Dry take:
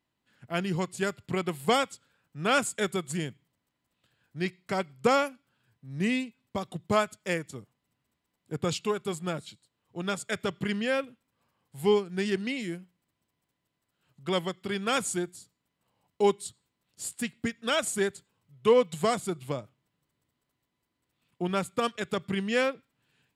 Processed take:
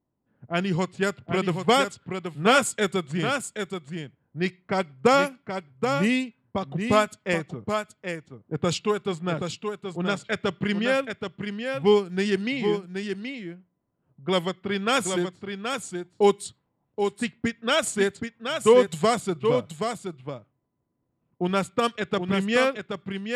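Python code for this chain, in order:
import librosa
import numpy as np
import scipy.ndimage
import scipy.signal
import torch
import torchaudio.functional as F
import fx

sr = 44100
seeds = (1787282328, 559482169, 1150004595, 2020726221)

y = fx.env_lowpass(x, sr, base_hz=680.0, full_db=-23.5)
y = y + 10.0 ** (-6.5 / 20.0) * np.pad(y, (int(776 * sr / 1000.0), 0))[:len(y)]
y = y * librosa.db_to_amplitude(4.5)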